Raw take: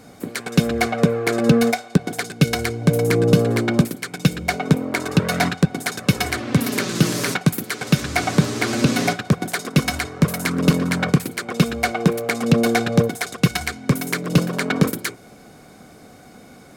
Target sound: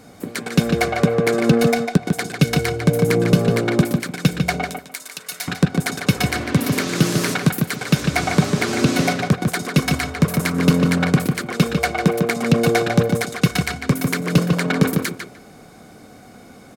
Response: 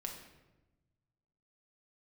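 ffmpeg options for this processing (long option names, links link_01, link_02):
-filter_complex "[0:a]asettb=1/sr,asplit=3[link_01][link_02][link_03];[link_01]atrim=end=4.644[link_04];[link_02]atrim=start=4.64:end=5.48,asetpts=PTS-STARTPTS,afade=type=in:duration=0.004:curve=qsin,afade=type=out:start_time=0.836:duration=0.004:curve=qsin,aderivative[link_05];[link_03]atrim=start=5.476[link_06];[link_04][link_05]acrossfade=duration=0.004:curve1=hsin:curve2=qsin[link_07];[link_07][link_06]acrossfade=duration=0.004:curve1=qsin:curve2=hsin,asplit=2[link_08][link_09];[link_09]adelay=149,lowpass=frequency=3500:poles=1,volume=-4.5dB,asplit=2[link_10][link_11];[link_11]adelay=149,lowpass=frequency=3500:poles=1,volume=0.18,asplit=2[link_12][link_13];[link_13]adelay=149,lowpass=frequency=3500:poles=1,volume=0.18[link_14];[link_08][link_10][link_12][link_14]amix=inputs=4:normalize=0"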